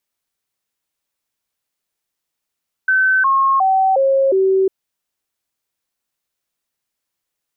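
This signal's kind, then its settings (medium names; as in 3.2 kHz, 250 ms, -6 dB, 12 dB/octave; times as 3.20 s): stepped sine 1.53 kHz down, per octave 2, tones 5, 0.36 s, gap 0.00 s -11 dBFS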